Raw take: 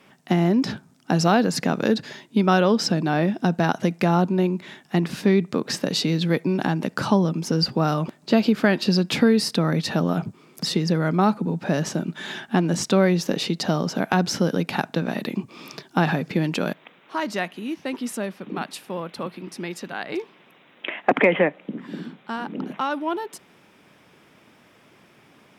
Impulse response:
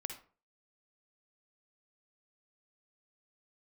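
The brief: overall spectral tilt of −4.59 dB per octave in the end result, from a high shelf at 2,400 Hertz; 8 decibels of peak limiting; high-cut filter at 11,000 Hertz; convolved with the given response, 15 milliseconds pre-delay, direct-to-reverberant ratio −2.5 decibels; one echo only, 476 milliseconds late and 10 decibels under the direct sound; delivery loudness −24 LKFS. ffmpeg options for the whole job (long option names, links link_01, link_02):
-filter_complex "[0:a]lowpass=11000,highshelf=frequency=2400:gain=4,alimiter=limit=-12dB:level=0:latency=1,aecho=1:1:476:0.316,asplit=2[link_01][link_02];[1:a]atrim=start_sample=2205,adelay=15[link_03];[link_02][link_03]afir=irnorm=-1:irlink=0,volume=4dB[link_04];[link_01][link_04]amix=inputs=2:normalize=0,volume=-3.5dB"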